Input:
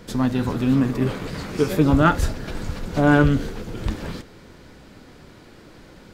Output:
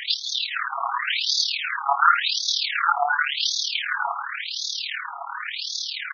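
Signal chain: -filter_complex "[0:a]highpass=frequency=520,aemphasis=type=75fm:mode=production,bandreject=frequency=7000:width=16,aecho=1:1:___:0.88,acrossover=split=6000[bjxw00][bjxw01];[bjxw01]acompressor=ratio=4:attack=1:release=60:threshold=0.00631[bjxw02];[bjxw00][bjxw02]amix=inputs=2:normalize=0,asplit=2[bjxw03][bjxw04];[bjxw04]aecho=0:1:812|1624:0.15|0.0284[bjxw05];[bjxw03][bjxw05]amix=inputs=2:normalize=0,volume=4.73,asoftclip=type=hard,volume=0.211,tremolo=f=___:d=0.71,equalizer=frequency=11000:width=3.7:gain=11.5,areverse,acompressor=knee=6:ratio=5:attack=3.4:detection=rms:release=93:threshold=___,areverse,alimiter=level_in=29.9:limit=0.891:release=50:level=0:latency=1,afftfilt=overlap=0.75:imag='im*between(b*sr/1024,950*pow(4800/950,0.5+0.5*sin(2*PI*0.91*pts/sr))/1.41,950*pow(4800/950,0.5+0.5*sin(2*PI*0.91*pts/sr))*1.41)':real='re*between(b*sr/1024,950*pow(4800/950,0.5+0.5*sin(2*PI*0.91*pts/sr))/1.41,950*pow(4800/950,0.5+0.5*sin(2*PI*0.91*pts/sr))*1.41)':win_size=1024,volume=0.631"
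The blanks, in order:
7.3, 37, 0.0126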